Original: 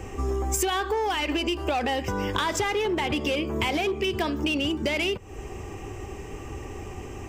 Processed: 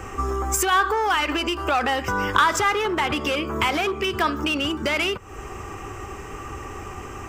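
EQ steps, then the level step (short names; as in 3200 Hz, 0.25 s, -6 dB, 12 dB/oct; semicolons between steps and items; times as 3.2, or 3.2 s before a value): bell 1300 Hz +14.5 dB 0.8 oct; high shelf 4300 Hz +5 dB; 0.0 dB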